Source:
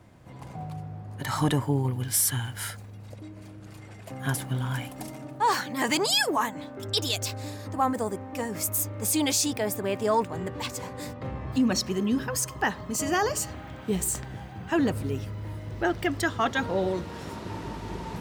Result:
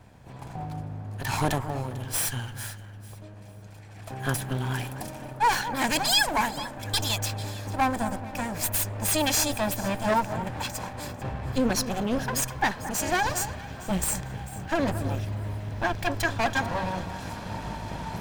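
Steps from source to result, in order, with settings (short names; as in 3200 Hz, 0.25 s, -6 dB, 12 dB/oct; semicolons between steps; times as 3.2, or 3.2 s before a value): minimum comb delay 1.2 ms; 1.58–3.96 flange 1.6 Hz, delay 5.8 ms, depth 6.5 ms, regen -72%; echo with dull and thin repeats by turns 0.223 s, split 1800 Hz, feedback 53%, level -12 dB; gain +2.5 dB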